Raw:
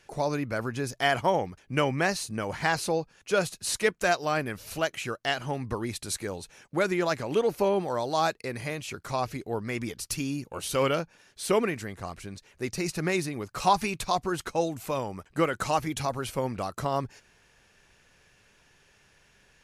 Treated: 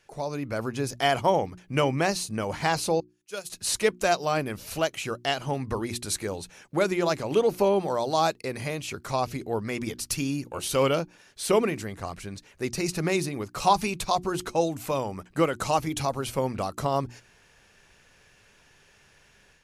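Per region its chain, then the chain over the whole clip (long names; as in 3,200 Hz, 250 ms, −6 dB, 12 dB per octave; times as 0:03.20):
0:03.00–0:03.50: first-order pre-emphasis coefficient 0.8 + expander for the loud parts 2.5 to 1, over −46 dBFS
whole clip: mains-hum notches 60/120/180/240/300/360 Hz; dynamic equaliser 1,700 Hz, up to −6 dB, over −44 dBFS, Q 1.9; automatic gain control gain up to 7 dB; level −4 dB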